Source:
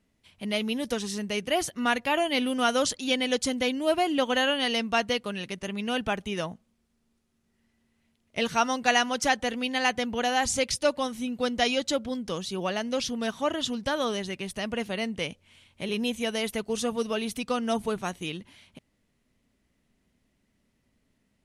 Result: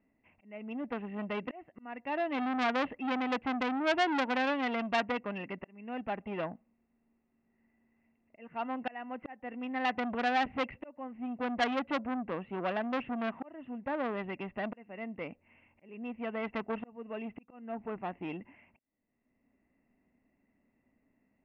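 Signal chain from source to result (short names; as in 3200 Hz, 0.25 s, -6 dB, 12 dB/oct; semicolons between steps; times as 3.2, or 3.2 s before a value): bell 270 Hz +10 dB 0.88 oct; auto swell 0.789 s; rippled Chebyshev low-pass 2800 Hz, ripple 9 dB; bell 1100 Hz +3.5 dB 0.77 oct; core saturation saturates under 2200 Hz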